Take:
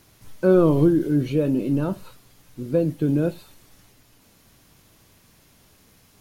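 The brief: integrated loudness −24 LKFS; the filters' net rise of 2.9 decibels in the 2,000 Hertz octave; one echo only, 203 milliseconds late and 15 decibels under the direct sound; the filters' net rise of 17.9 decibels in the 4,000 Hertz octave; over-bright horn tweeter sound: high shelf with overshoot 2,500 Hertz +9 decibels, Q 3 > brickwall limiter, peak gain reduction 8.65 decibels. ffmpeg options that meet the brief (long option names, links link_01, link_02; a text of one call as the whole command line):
ffmpeg -i in.wav -af "equalizer=frequency=2000:width_type=o:gain=6,highshelf=frequency=2500:width_type=q:width=3:gain=9,equalizer=frequency=4000:width_type=o:gain=3,aecho=1:1:203:0.178,volume=1.5dB,alimiter=limit=-14dB:level=0:latency=1" out.wav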